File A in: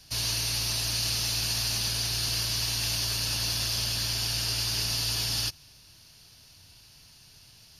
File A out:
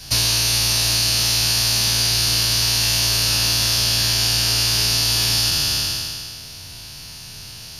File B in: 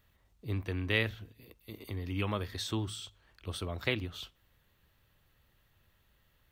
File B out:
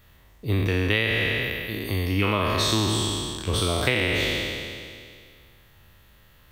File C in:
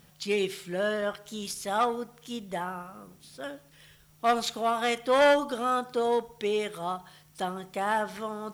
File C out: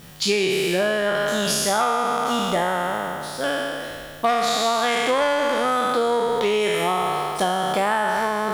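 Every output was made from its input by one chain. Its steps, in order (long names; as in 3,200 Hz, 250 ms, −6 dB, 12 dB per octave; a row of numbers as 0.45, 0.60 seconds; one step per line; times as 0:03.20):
peak hold with a decay on every bin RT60 2.19 s
downward compressor 10 to 1, threshold −29 dBFS
normalise the peak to −6 dBFS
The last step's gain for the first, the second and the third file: +14.0, +11.0, +11.5 decibels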